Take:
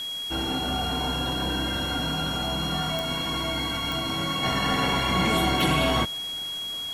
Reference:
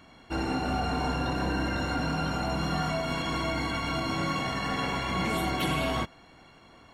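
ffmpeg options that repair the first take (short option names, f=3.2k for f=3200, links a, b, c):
-af "adeclick=t=4,bandreject=f=3.3k:w=30,afwtdn=0.0063,asetnsamples=n=441:p=0,asendcmd='4.43 volume volume -5.5dB',volume=0dB"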